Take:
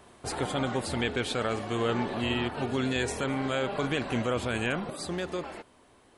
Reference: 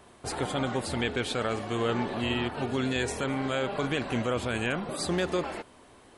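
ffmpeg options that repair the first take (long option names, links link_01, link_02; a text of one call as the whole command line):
ffmpeg -i in.wav -af "asetnsamples=nb_out_samples=441:pad=0,asendcmd='4.9 volume volume 5dB',volume=0dB" out.wav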